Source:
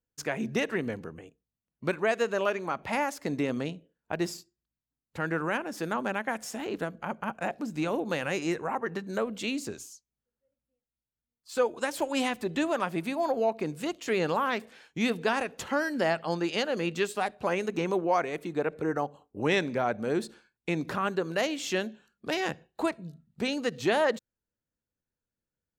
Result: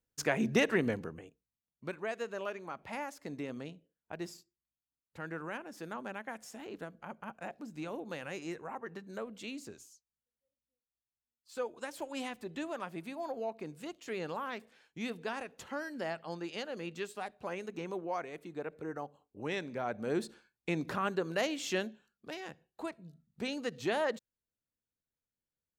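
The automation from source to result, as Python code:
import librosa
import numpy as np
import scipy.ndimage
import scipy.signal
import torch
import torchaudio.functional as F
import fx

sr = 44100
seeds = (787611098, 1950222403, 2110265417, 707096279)

y = fx.gain(x, sr, db=fx.line((0.89, 1.0), (1.85, -11.0), (19.63, -11.0), (20.17, -4.0), (21.81, -4.0), (22.44, -14.5), (23.46, -7.0)))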